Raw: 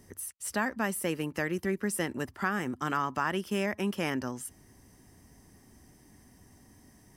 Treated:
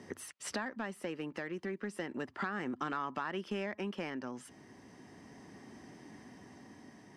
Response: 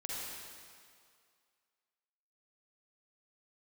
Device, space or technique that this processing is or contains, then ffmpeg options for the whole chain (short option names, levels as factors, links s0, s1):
AM radio: -af "highpass=190,lowpass=3900,acompressor=threshold=0.00794:ratio=5,asoftclip=type=tanh:threshold=0.0224,tremolo=f=0.34:d=0.31,volume=2.66"